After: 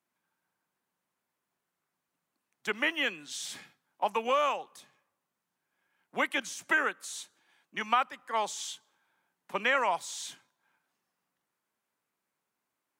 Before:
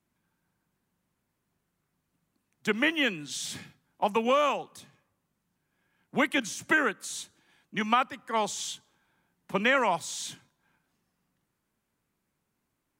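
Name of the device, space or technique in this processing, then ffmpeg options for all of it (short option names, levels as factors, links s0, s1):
filter by subtraction: -filter_complex "[0:a]asplit=2[s0][s1];[s1]lowpass=840,volume=-1[s2];[s0][s2]amix=inputs=2:normalize=0,volume=0.668"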